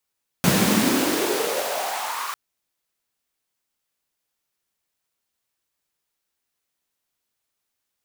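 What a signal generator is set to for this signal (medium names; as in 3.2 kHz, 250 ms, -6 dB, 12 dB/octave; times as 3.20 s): swept filtered noise pink, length 1.90 s highpass, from 150 Hz, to 1.2 kHz, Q 4.4, exponential, gain ramp -12 dB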